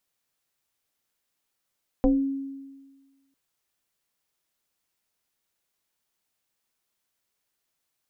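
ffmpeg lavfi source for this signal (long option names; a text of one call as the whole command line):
ffmpeg -f lavfi -i "aevalsrc='0.178*pow(10,-3*t/1.43)*sin(2*PI*273*t+1.5*pow(10,-3*t/0.32)*sin(2*PI*0.89*273*t))':duration=1.3:sample_rate=44100" out.wav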